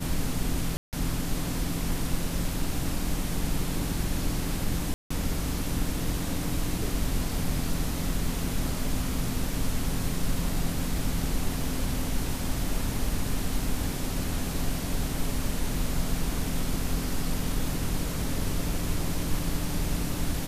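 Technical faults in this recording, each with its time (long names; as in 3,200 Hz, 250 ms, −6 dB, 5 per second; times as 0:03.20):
0:00.77–0:00.93: drop-out 158 ms
0:04.94–0:05.11: drop-out 165 ms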